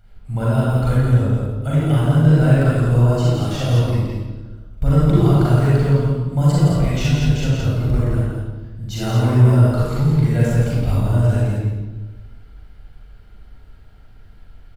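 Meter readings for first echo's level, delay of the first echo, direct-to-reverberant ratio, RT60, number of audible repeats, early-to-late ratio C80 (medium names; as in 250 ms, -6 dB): -3.5 dB, 168 ms, -8.0 dB, 1.3 s, 1, -1.5 dB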